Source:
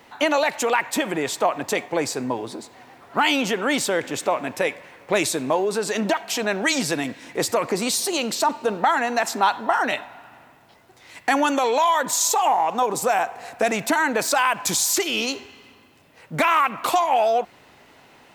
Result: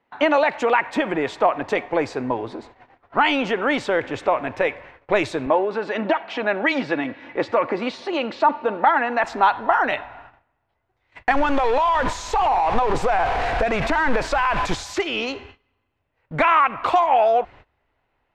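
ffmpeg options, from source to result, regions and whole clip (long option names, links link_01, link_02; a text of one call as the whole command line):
ffmpeg -i in.wav -filter_complex "[0:a]asettb=1/sr,asplit=3[link_01][link_02][link_03];[link_01]atrim=end=5.464[link_04];[link_02]atrim=start=5.46:end=9.24,asetpts=PTS-STARTPTS,afade=type=in:duration=0.004:curve=qsin,afade=type=out:start_time=3.776:duration=0.004:curve=qsin,highpass=150,lowpass=3700,aecho=1:1:3.5:0.33,atrim=end_sample=166698[link_05];[link_03]atrim=start=9.236[link_06];[link_04][link_05]acrossfade=duration=0.004:curve1=hsin:curve2=qsin[link_07];[link_07][link_06]acrossfade=duration=0.004:curve1=qsin:curve2=hsin,asettb=1/sr,asplit=3[link_08][link_09][link_10];[link_08]atrim=end=11.314[link_11];[link_09]atrim=start=11.31:end=14.83,asetpts=PTS-STARTPTS,afade=type=in:duration=0.004:curve=qsin,afade=type=out:start_time=3.516:duration=0.004:curve=qsin,aeval=exprs='val(0)+0.5*0.0944*sgn(val(0))':channel_layout=same,acompressor=threshold=-18dB:ratio=6:attack=3.2:release=140:knee=1:detection=peak[link_12];[link_10]atrim=start=14.826[link_13];[link_11][link_12]acrossfade=duration=0.004:curve1=hsin:curve2=qsin[link_14];[link_14][link_13]acrossfade=duration=0.004:curve1=qsin:curve2=hsin,lowpass=2400,agate=range=-22dB:threshold=-45dB:ratio=16:detection=peak,asubboost=boost=11.5:cutoff=56,volume=3dB" out.wav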